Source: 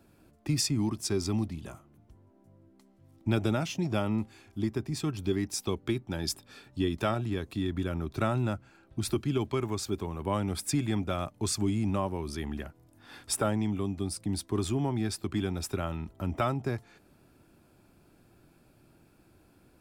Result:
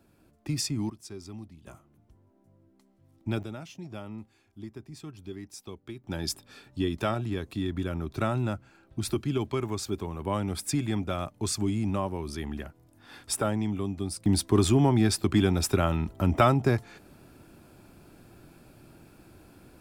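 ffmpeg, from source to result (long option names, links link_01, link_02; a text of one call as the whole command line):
ffmpeg -i in.wav -af "asetnsamples=nb_out_samples=441:pad=0,asendcmd='0.9 volume volume -12.5dB;1.67 volume volume -3dB;3.43 volume volume -11dB;6.04 volume volume 0.5dB;14.26 volume volume 8dB',volume=-2dB" out.wav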